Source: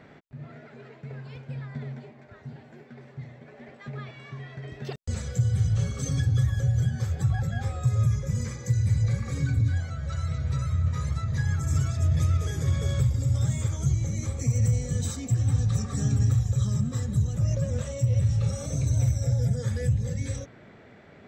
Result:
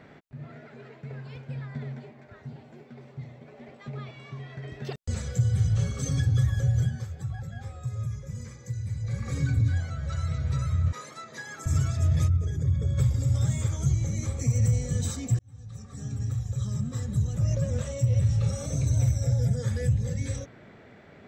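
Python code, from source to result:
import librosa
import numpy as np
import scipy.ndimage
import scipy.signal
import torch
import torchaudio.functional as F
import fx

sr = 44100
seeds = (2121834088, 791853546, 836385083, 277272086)

y = fx.peak_eq(x, sr, hz=1700.0, db=-7.0, octaves=0.42, at=(2.48, 4.5))
y = fx.highpass(y, sr, hz=280.0, slope=24, at=(10.92, 11.66))
y = fx.envelope_sharpen(y, sr, power=1.5, at=(12.27, 12.97), fade=0.02)
y = fx.edit(y, sr, fx.fade_down_up(start_s=6.81, length_s=2.49, db=-9.0, fade_s=0.27),
    fx.fade_in_span(start_s=15.39, length_s=2.17), tone=tone)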